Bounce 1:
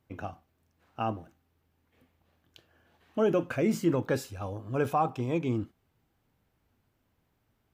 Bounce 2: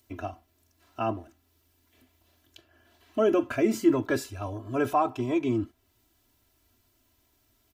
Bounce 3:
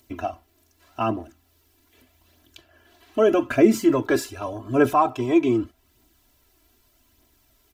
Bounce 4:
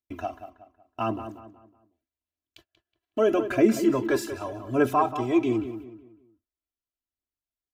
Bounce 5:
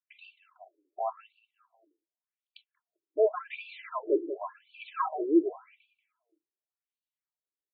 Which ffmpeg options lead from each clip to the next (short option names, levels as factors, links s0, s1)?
-filter_complex "[0:a]aecho=1:1:3:0.99,acrossover=split=3600[s0][s1];[s1]acompressor=mode=upward:threshold=0.00112:ratio=2.5[s2];[s0][s2]amix=inputs=2:normalize=0"
-af "equalizer=f=98:w=7:g=-14.5,aphaser=in_gain=1:out_gain=1:delay=3.1:decay=0.37:speed=0.83:type=triangular,volume=1.88"
-filter_complex "[0:a]agate=range=0.0224:threshold=0.00355:ratio=16:detection=peak,asplit=2[s0][s1];[s1]adelay=185,lowpass=f=2800:p=1,volume=0.299,asplit=2[s2][s3];[s3]adelay=185,lowpass=f=2800:p=1,volume=0.37,asplit=2[s4][s5];[s5]adelay=185,lowpass=f=2800:p=1,volume=0.37,asplit=2[s6][s7];[s7]adelay=185,lowpass=f=2800:p=1,volume=0.37[s8];[s0][s2][s4][s6][s8]amix=inputs=5:normalize=0,volume=0.631"
-af "afftfilt=real='re*between(b*sr/1024,370*pow(3400/370,0.5+0.5*sin(2*PI*0.89*pts/sr))/1.41,370*pow(3400/370,0.5+0.5*sin(2*PI*0.89*pts/sr))*1.41)':imag='im*between(b*sr/1024,370*pow(3400/370,0.5+0.5*sin(2*PI*0.89*pts/sr))/1.41,370*pow(3400/370,0.5+0.5*sin(2*PI*0.89*pts/sr))*1.41)':win_size=1024:overlap=0.75"